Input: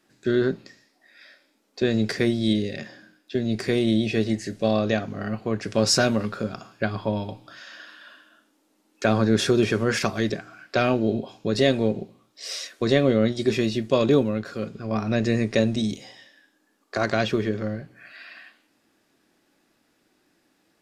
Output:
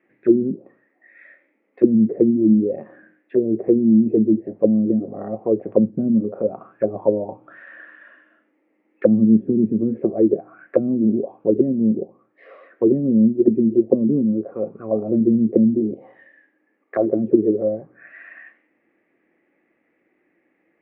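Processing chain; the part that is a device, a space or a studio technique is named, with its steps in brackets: envelope filter bass rig (touch-sensitive low-pass 220–2100 Hz down, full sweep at -17.5 dBFS; cabinet simulation 73–2400 Hz, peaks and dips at 90 Hz -9 dB, 130 Hz -4 dB, 340 Hz +6 dB, 510 Hz +7 dB, 990 Hz -4 dB, 1.5 kHz -9 dB); trim -2.5 dB

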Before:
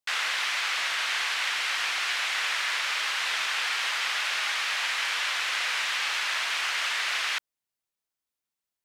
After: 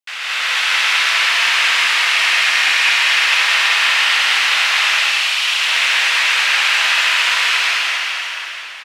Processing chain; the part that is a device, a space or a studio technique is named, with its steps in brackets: stadium PA (high-pass 240 Hz 6 dB/octave; peaking EQ 2.6 kHz +5.5 dB 0.82 oct; loudspeakers at several distances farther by 72 m -2 dB, 93 m -11 dB; reverberation RT60 2.3 s, pre-delay 26 ms, DRR 1 dB); 4.84–5.45 s: elliptic band-stop 200–2800 Hz; plate-style reverb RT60 4 s, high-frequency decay 0.85×, pre-delay 115 ms, DRR -8.5 dB; trim -2.5 dB

